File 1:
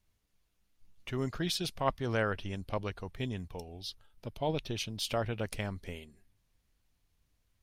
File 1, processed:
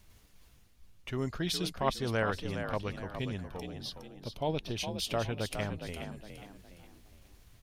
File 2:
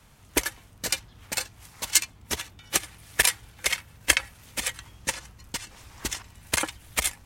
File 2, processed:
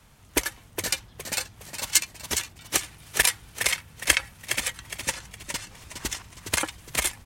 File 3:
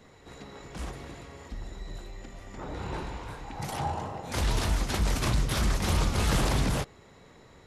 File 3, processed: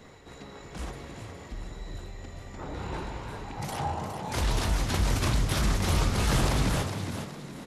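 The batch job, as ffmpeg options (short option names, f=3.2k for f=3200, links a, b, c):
-filter_complex "[0:a]areverse,acompressor=mode=upward:threshold=-43dB:ratio=2.5,areverse,asplit=5[a][b][c][d][e];[b]adelay=413,afreqshift=48,volume=-8dB[f];[c]adelay=826,afreqshift=96,volume=-16.9dB[g];[d]adelay=1239,afreqshift=144,volume=-25.7dB[h];[e]adelay=1652,afreqshift=192,volume=-34.6dB[i];[a][f][g][h][i]amix=inputs=5:normalize=0"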